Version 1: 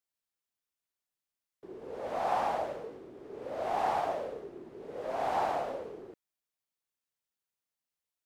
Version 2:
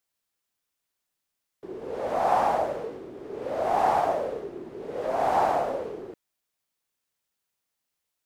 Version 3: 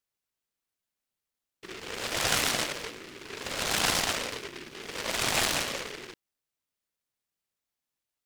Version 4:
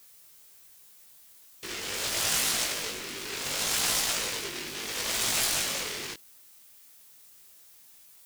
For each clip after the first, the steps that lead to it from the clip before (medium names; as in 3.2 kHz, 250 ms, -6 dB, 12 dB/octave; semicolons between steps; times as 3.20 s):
dynamic bell 3.2 kHz, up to -5 dB, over -49 dBFS, Q 0.8; trim +8 dB
delay time shaken by noise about 2 kHz, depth 0.39 ms; trim -4.5 dB
pre-emphasis filter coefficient 0.8; power-law waveshaper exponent 0.5; chorus 0.76 Hz, delay 17.5 ms, depth 3.2 ms